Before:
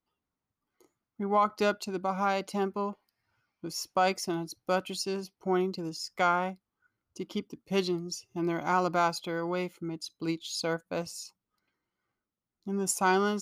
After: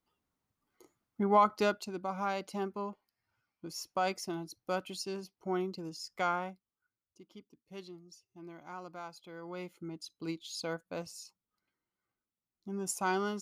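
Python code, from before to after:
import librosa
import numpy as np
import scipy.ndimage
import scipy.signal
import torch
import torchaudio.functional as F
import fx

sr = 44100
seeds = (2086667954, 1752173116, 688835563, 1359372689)

y = fx.gain(x, sr, db=fx.line((1.21, 2.5), (1.96, -6.0), (6.34, -6.0), (7.22, -18.5), (9.11, -18.5), (9.8, -6.5)))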